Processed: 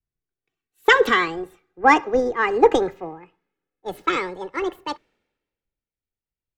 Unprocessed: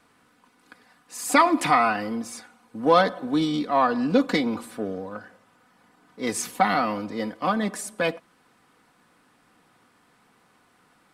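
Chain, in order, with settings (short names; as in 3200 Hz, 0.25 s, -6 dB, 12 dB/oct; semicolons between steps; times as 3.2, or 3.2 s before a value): speed glide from 150% -> 189%; RIAA curve playback; three-band expander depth 100%; gain -1 dB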